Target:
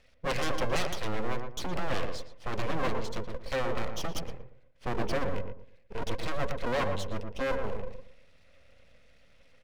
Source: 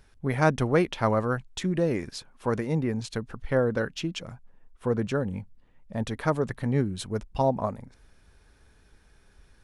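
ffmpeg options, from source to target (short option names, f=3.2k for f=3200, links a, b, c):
-filter_complex "[0:a]asplit=3[a][b][c];[a]bandpass=f=270:t=q:w=8,volume=0dB[d];[b]bandpass=f=2.29k:t=q:w=8,volume=-6dB[e];[c]bandpass=f=3.01k:t=q:w=8,volume=-9dB[f];[d][e][f]amix=inputs=3:normalize=0,acrossover=split=150|3700[g][h][i];[h]aeval=exprs='abs(val(0))':c=same[j];[g][j][i]amix=inputs=3:normalize=0,acontrast=80,aeval=exprs='0.126*sin(PI/2*5.01*val(0)/0.126)':c=same,asplit=2[k][l];[l]adelay=115,lowpass=f=1.1k:p=1,volume=-4dB,asplit=2[m][n];[n]adelay=115,lowpass=f=1.1k:p=1,volume=0.29,asplit=2[o][p];[p]adelay=115,lowpass=f=1.1k:p=1,volume=0.29,asplit=2[q][r];[r]adelay=115,lowpass=f=1.1k:p=1,volume=0.29[s];[k][m][o][q][s]amix=inputs=5:normalize=0,volume=-7.5dB"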